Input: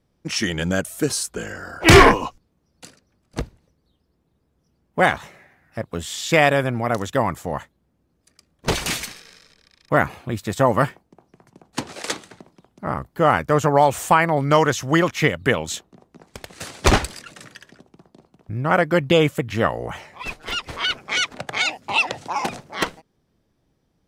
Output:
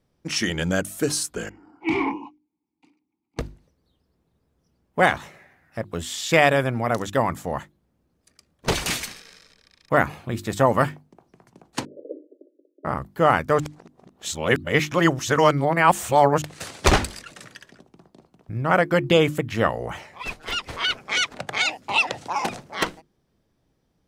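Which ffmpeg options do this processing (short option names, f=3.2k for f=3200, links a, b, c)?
-filter_complex "[0:a]asettb=1/sr,asplit=3[a][b][c];[a]atrim=end=1.494[d];[b]atrim=start=1.49:end=3.39,asetpts=PTS-STARTPTS,afade=t=in:d=0.004:c=qsin,afade=t=out:st=1.896:d=0.004:c=qsin,asplit=3[e][f][g];[e]bandpass=f=300:t=q:w=8,volume=0dB[h];[f]bandpass=f=870:t=q:w=8,volume=-6dB[i];[g]bandpass=f=2.24k:t=q:w=8,volume=-9dB[j];[h][i][j]amix=inputs=3:normalize=0[k];[c]atrim=start=3.386[l];[d][k]acrossfade=d=0.004:c1=hsin:c2=qsin[m];[m][l]acrossfade=d=0.004:c1=qsin:c2=hsin,asettb=1/sr,asplit=3[n][o][p];[n]atrim=end=11.854[q];[o]atrim=start=11.85:end=12.85,asetpts=PTS-STARTPTS,afade=t=in:d=0.004:c=qsin,afade=t=out:st=0.996:d=0.004:c=qsin,asuperpass=centerf=400:order=20:qfactor=1.2[r];[p]atrim=start=12.846[s];[q][r]acrossfade=d=0.004:c1=hsin:c2=qsin[t];[t][s]acrossfade=d=0.004:c1=qsin:c2=hsin,asplit=3[u][v][w];[u]atrim=end=13.602[x];[v]atrim=start=13.598:end=16.422,asetpts=PTS-STARTPTS,areverse[y];[w]atrim=start=16.418[z];[x][y]acrossfade=d=0.004:c1=hsin:c2=hsin[aa];[aa][z]acrossfade=d=0.004:c1=hsin:c2=hsin,bandreject=f=50:t=h:w=6,bandreject=f=100:t=h:w=6,bandreject=f=150:t=h:w=6,bandreject=f=200:t=h:w=6,bandreject=f=250:t=h:w=6,bandreject=f=300:t=h:w=6,bandreject=f=350:t=h:w=6,volume=-1dB"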